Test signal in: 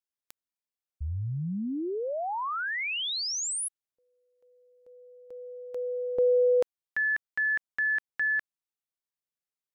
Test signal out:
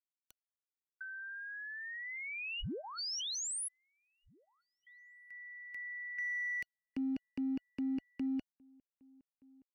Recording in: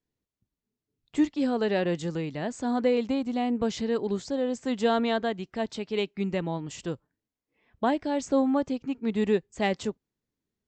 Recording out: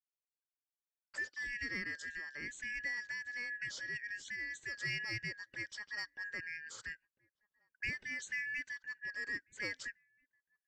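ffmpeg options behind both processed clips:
ffmpeg -i in.wav -filter_complex "[0:a]afftfilt=real='real(if(lt(b,272),68*(eq(floor(b/68),0)*1+eq(floor(b/68),1)*0+eq(floor(b/68),2)*3+eq(floor(b/68),3)*2)+mod(b,68),b),0)':imag='imag(if(lt(b,272),68*(eq(floor(b/68),0)*1+eq(floor(b/68),1)*0+eq(floor(b/68),2)*3+eq(floor(b/68),3)*2)+mod(b,68),b),0)':win_size=2048:overlap=0.75,agate=range=-28dB:threshold=-58dB:ratio=16:release=142:detection=peak,acrossover=split=410|2700[link_01][link_02][link_03];[link_02]acompressor=threshold=-43dB:ratio=2.5:release=426:knee=2.83:detection=peak[link_04];[link_01][link_04][link_03]amix=inputs=3:normalize=0,asplit=2[link_05][link_06];[link_06]asoftclip=type=hard:threshold=-29.5dB,volume=-12dB[link_07];[link_05][link_07]amix=inputs=2:normalize=0,asuperstop=centerf=700:order=4:qfactor=6.3,asplit=2[link_08][link_09];[link_09]adelay=1633,volume=-27dB,highshelf=frequency=4000:gain=-36.7[link_10];[link_08][link_10]amix=inputs=2:normalize=0,volume=-9dB" out.wav

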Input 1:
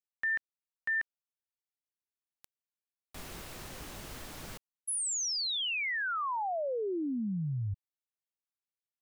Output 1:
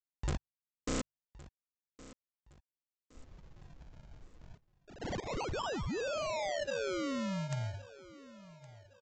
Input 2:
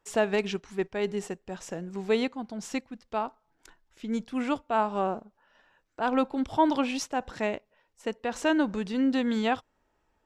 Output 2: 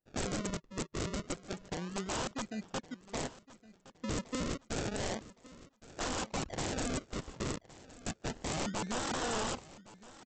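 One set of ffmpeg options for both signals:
ffmpeg -i in.wav -filter_complex "[0:a]bandreject=frequency=50:width_type=h:width=6,bandreject=frequency=100:width_type=h:width=6,bandreject=frequency=150:width_type=h:width=6,afwtdn=0.0178,asplit=2[link_01][link_02];[link_02]volume=22.5dB,asoftclip=hard,volume=-22.5dB,volume=-11dB[link_03];[link_01][link_03]amix=inputs=2:normalize=0,acrusher=samples=39:mix=1:aa=0.000001:lfo=1:lforange=39:lforate=0.3,aresample=16000,aeval=exprs='(mod(18.8*val(0)+1,2)-1)/18.8':channel_layout=same,aresample=44100,aecho=1:1:1115|2230|3345:0.119|0.0428|0.0154,volume=-4.5dB" out.wav

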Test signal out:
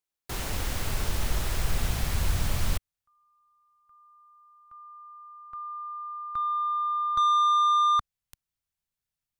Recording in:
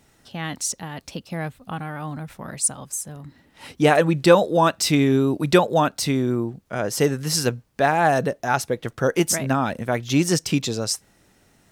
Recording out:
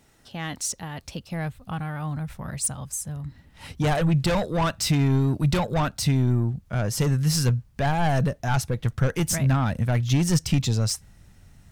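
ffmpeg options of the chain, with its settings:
ffmpeg -i in.wav -af "asoftclip=type=tanh:threshold=-17.5dB,asubboost=boost=8.5:cutoff=120,volume=-1.5dB" out.wav

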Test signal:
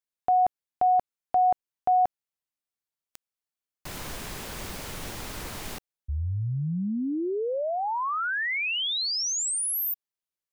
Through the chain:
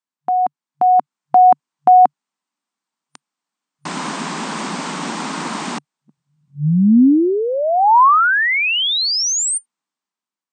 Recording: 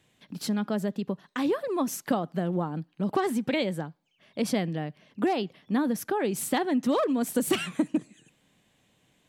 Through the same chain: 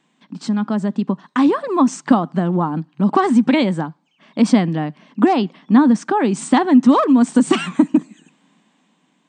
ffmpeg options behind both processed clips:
ffmpeg -i in.wav -af "afftfilt=real='re*between(b*sr/4096,140,9000)':imag='im*between(b*sr/4096,140,9000)':win_size=4096:overlap=0.75,equalizer=frequency=250:width_type=o:width=1:gain=10,equalizer=frequency=500:width_type=o:width=1:gain=-5,equalizer=frequency=1000:width_type=o:width=1:gain=10,dynaudnorm=framelen=410:gausssize=5:maxgain=10dB" out.wav

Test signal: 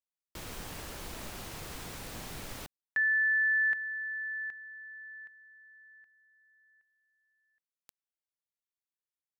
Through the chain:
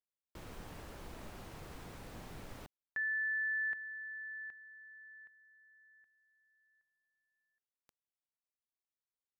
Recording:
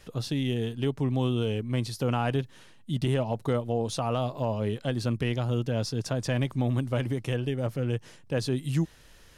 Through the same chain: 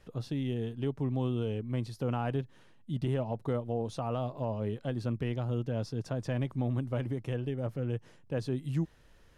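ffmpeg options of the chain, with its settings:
ffmpeg -i in.wav -af "highshelf=frequency=2300:gain=-10.5,volume=-4.5dB" out.wav

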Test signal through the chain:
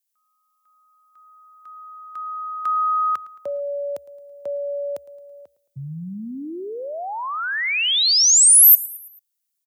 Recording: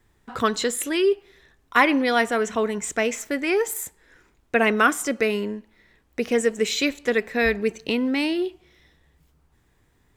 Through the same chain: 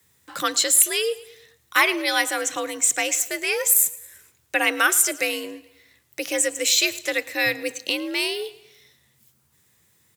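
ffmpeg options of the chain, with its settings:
ffmpeg -i in.wav -af "aecho=1:1:110|220|330|440:0.1|0.049|0.024|0.0118,afreqshift=65,crystalizer=i=8.5:c=0,volume=-7.5dB" out.wav

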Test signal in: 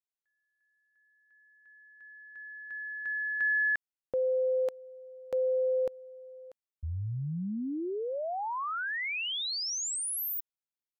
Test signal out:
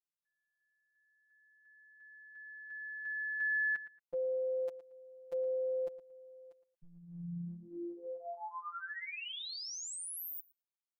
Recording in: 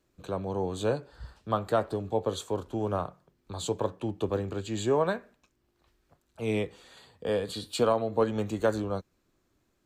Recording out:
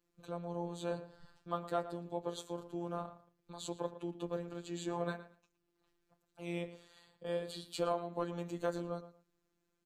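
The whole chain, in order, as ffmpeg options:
ffmpeg -i in.wav -filter_complex "[0:a]asplit=2[link_01][link_02];[link_02]adelay=114,lowpass=frequency=3500:poles=1,volume=-13.5dB,asplit=2[link_03][link_04];[link_04]adelay=114,lowpass=frequency=3500:poles=1,volume=0.21[link_05];[link_01][link_03][link_05]amix=inputs=3:normalize=0,afftfilt=real='hypot(re,im)*cos(PI*b)':imag='0':win_size=1024:overlap=0.75,volume=-6dB" out.wav

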